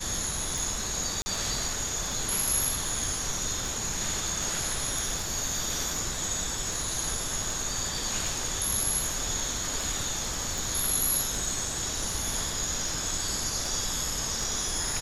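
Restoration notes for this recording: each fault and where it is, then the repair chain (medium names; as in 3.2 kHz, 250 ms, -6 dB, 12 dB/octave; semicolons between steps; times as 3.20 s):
tick 78 rpm
1.22–1.26 s: dropout 40 ms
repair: de-click; interpolate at 1.22 s, 40 ms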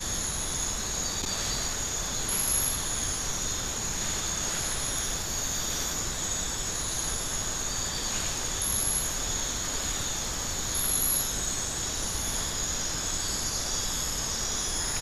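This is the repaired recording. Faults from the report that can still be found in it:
nothing left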